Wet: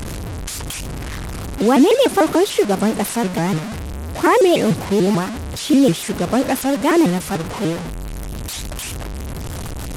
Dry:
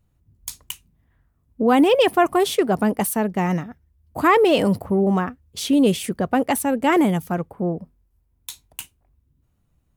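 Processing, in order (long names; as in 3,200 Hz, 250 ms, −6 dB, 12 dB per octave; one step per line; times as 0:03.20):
linear delta modulator 64 kbit/s, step −21 dBFS
dynamic equaliser 330 Hz, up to +4 dB, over −26 dBFS, Q 0.98
pitch modulation by a square or saw wave saw up 6.8 Hz, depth 250 cents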